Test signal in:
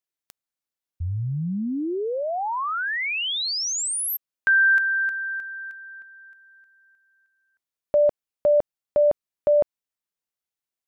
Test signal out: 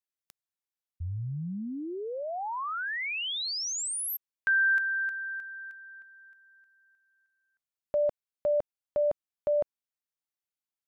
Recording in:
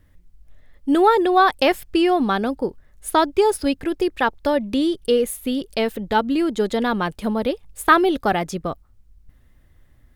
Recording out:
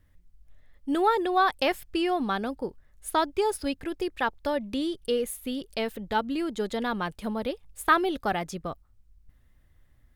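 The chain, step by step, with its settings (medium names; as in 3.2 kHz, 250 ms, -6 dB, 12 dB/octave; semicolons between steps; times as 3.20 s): peaking EQ 330 Hz -3 dB 1.9 oct; trim -6.5 dB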